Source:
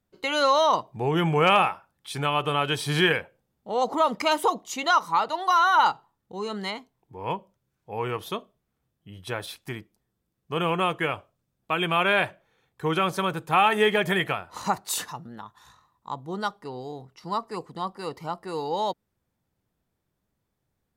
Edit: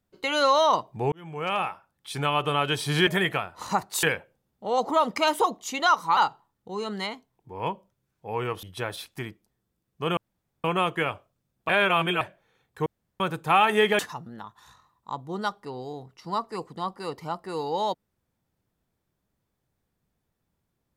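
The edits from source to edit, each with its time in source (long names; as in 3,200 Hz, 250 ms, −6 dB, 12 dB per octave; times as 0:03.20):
0:01.12–0:02.19: fade in
0:05.21–0:05.81: remove
0:08.27–0:09.13: remove
0:10.67: splice in room tone 0.47 s
0:11.72–0:12.24: reverse
0:12.89–0:13.23: fill with room tone
0:14.02–0:14.98: move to 0:03.07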